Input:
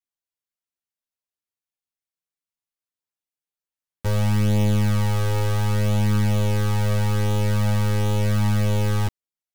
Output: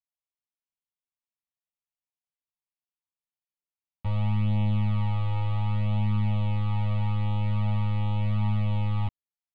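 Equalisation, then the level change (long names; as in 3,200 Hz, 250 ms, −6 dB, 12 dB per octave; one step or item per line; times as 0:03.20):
high-frequency loss of the air 230 metres
phaser with its sweep stopped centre 1,600 Hz, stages 6
−4.0 dB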